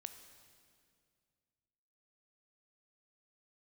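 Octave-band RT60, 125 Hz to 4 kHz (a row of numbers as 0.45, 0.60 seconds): 2.8, 2.5, 2.3, 2.0, 2.0, 1.9 seconds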